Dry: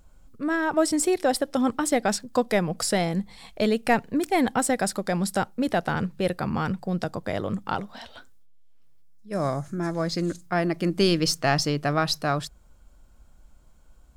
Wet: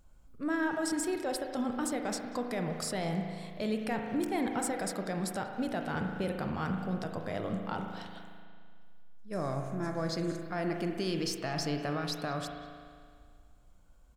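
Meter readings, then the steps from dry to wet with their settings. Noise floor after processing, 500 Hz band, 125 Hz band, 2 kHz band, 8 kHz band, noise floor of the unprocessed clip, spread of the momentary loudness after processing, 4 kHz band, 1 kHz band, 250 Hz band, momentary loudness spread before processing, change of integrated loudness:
-57 dBFS, -9.5 dB, -8.0 dB, -9.0 dB, -9.5 dB, -54 dBFS, 7 LU, -10.0 dB, -9.5 dB, -7.5 dB, 8 LU, -9.0 dB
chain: limiter -18.5 dBFS, peak gain reduction 10 dB; speakerphone echo 0.19 s, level -14 dB; spring tank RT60 2 s, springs 37 ms, chirp 75 ms, DRR 3.5 dB; gain -7 dB

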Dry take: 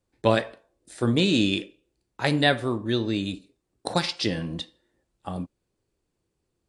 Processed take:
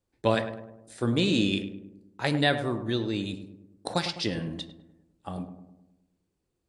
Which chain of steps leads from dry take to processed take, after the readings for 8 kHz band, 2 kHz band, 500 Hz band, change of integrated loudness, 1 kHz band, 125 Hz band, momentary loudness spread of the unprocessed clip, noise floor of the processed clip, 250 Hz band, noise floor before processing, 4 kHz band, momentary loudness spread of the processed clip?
-3.5 dB, -3.5 dB, -3.0 dB, -3.0 dB, -3.0 dB, -2.5 dB, 18 LU, -80 dBFS, -3.0 dB, -79 dBFS, -3.5 dB, 18 LU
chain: darkening echo 0.103 s, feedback 56%, low-pass 1200 Hz, level -9 dB; gain -3.5 dB

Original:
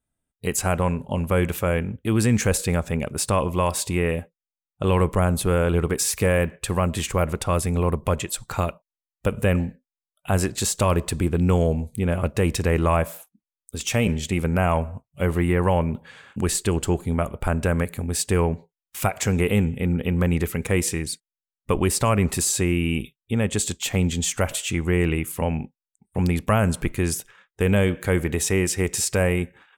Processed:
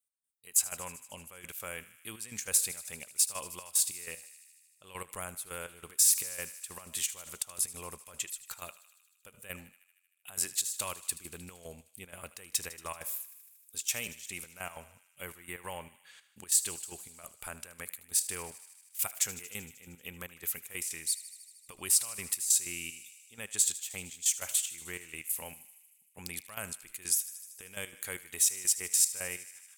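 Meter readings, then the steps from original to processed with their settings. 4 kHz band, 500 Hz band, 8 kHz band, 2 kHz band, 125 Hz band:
-7.0 dB, -25.0 dB, -1.0 dB, -13.5 dB, -31.5 dB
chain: pre-emphasis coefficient 0.97; step gate "x..xx..x.xx" 188 bpm -12 dB; on a send: thinning echo 77 ms, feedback 76%, high-pass 1000 Hz, level -15.5 dB

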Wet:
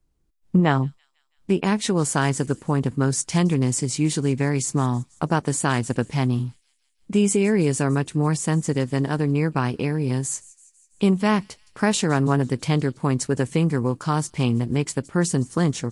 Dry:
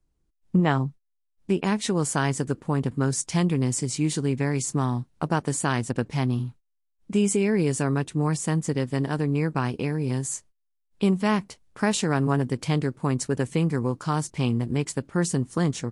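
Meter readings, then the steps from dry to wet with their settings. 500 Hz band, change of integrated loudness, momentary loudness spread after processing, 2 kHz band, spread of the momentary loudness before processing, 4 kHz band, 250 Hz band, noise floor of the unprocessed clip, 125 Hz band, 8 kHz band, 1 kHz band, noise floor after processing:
+3.0 dB, +3.0 dB, 5 LU, +3.0 dB, 5 LU, +3.0 dB, +3.0 dB, -75 dBFS, +3.0 dB, +3.0 dB, +3.0 dB, -68 dBFS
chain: thin delay 0.165 s, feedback 59%, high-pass 4100 Hz, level -19.5 dB; gain +3 dB

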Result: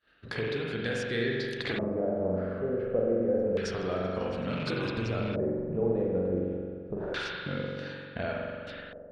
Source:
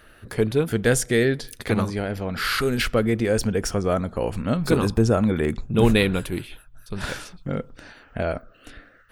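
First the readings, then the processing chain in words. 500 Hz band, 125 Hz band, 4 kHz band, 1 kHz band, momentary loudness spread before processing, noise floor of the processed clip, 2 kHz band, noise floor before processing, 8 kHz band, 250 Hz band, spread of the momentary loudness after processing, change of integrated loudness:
-5.5 dB, -10.5 dB, -9.0 dB, -9.0 dB, 13 LU, -45 dBFS, -8.0 dB, -53 dBFS, under -20 dB, -9.0 dB, 9 LU, -8.0 dB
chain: rattling part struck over -23 dBFS, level -23 dBFS; expander -39 dBFS; HPF 130 Hz 6 dB/oct; bell 1600 Hz +3.5 dB 0.26 oct; compressor 4:1, threshold -33 dBFS, peak gain reduction 16 dB; on a send: delay with a stepping band-pass 0.109 s, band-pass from 500 Hz, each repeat 0.7 oct, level -9.5 dB; on the sum: spring tank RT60 2 s, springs 43 ms, chirp 60 ms, DRR -2.5 dB; LFO low-pass square 0.28 Hz 590–4000 Hz; gain -1.5 dB

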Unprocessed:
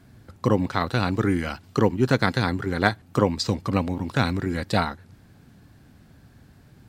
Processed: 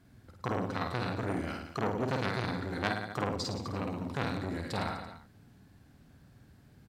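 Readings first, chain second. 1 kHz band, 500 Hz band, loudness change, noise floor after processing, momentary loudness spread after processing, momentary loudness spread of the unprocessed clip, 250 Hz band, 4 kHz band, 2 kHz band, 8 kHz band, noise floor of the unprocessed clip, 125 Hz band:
-8.5 dB, -10.5 dB, -10.5 dB, -60 dBFS, 5 LU, 6 LU, -11.5 dB, -9.5 dB, -9.5 dB, -9.0 dB, -53 dBFS, -11.0 dB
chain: reverse bouncing-ball echo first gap 50 ms, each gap 1.15×, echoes 5; core saturation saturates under 1700 Hz; gain -9 dB

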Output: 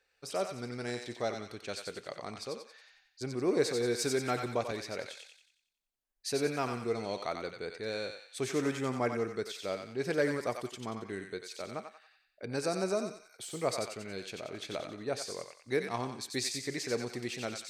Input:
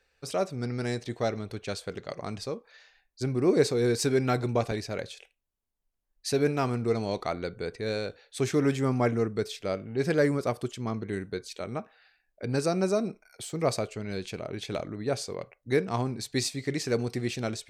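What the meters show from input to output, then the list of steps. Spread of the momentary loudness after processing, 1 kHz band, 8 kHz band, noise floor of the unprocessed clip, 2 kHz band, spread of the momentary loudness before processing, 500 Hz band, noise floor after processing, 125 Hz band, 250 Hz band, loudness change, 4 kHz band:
11 LU, -3.5 dB, -2.5 dB, -79 dBFS, -2.5 dB, 12 LU, -5.5 dB, -76 dBFS, -11.5 dB, -7.5 dB, -5.5 dB, -2.5 dB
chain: low shelf 190 Hz -11 dB; on a send: thinning echo 91 ms, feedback 48%, high-pass 1000 Hz, level -4 dB; on the sum: gain -4 dB

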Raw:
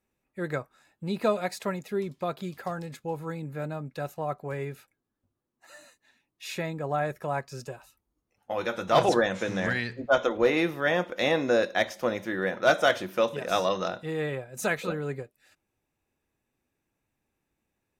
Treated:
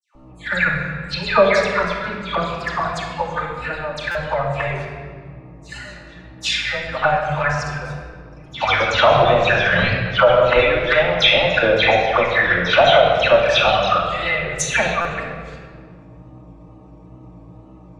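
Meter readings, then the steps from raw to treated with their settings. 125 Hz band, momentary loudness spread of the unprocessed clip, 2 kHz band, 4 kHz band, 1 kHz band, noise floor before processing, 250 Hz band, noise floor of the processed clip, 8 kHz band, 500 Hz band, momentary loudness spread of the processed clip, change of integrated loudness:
+10.5 dB, 12 LU, +13.5 dB, +16.0 dB, +12.0 dB, -82 dBFS, +3.5 dB, -43 dBFS, +11.5 dB, +10.0 dB, 16 LU, +11.5 dB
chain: treble ducked by the level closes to 2300 Hz, closed at -21.5 dBFS; passive tone stack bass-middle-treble 10-0-10; transient shaper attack +9 dB, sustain -5 dB; buzz 60 Hz, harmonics 21, -61 dBFS -6 dB/oct; dispersion lows, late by 0.146 s, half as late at 1800 Hz; wow and flutter 120 cents; envelope flanger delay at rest 7.5 ms, full sweep at -31 dBFS; vibrato 0.47 Hz 11 cents; air absorption 120 m; shoebox room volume 2700 m³, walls mixed, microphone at 2.5 m; maximiser +21.5 dB; stuck buffer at 4.11/15.01, samples 256, times 6; gain -1 dB

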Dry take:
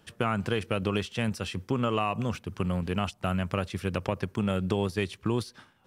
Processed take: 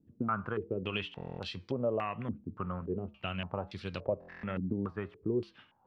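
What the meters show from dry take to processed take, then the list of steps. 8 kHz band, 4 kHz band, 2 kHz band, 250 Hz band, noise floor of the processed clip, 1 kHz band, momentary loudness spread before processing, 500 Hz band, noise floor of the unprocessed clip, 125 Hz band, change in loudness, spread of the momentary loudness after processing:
under -20 dB, -6.5 dB, -7.0 dB, -7.0 dB, -66 dBFS, -6.5 dB, 4 LU, -4.5 dB, -62 dBFS, -9.0 dB, -6.5 dB, 7 LU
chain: flange 1.3 Hz, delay 6.8 ms, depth 2.2 ms, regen -86%; stuck buffer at 1.16/4.2, samples 1024, times 9; stepped low-pass 3.5 Hz 270–4200 Hz; gain -5 dB

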